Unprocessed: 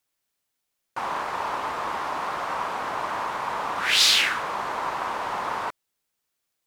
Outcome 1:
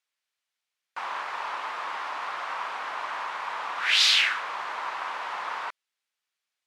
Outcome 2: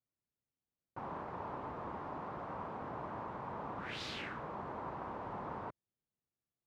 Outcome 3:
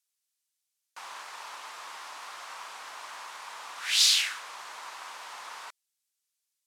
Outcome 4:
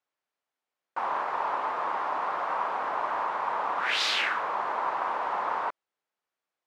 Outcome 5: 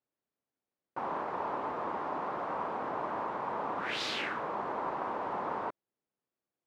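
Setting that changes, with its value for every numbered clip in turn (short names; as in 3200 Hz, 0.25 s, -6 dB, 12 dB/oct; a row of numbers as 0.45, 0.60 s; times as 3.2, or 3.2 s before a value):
band-pass, frequency: 2400, 110, 7800, 850, 300 Hz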